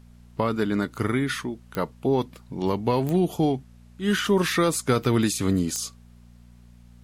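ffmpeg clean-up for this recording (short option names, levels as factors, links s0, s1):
-af "adeclick=t=4,bandreject=f=59.5:t=h:w=4,bandreject=f=119:t=h:w=4,bandreject=f=178.5:t=h:w=4,bandreject=f=238:t=h:w=4,agate=range=0.0891:threshold=0.00794"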